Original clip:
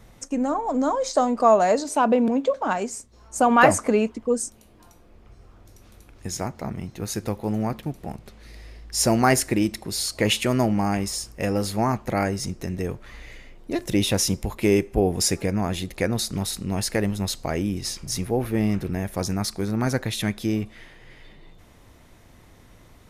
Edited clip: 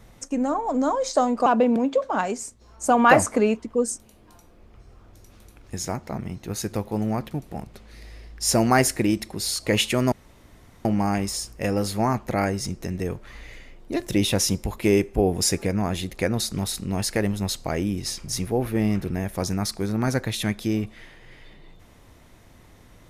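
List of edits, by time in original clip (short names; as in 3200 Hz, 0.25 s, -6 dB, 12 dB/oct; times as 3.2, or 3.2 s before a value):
1.46–1.98 cut
10.64 insert room tone 0.73 s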